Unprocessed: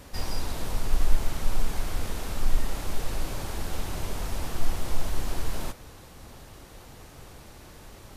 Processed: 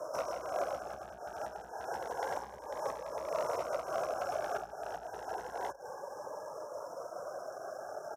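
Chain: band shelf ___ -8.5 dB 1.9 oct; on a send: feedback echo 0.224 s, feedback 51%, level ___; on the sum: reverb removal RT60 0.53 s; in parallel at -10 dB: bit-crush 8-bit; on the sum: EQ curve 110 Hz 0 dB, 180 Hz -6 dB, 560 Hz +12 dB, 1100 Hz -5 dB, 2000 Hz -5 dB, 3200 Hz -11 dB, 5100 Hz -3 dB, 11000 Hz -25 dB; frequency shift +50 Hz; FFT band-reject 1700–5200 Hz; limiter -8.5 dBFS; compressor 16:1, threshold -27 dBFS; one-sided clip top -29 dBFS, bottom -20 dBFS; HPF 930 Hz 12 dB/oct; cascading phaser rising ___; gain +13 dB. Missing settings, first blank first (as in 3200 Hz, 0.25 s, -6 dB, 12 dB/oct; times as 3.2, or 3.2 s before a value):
4600 Hz, -21 dB, 0.29 Hz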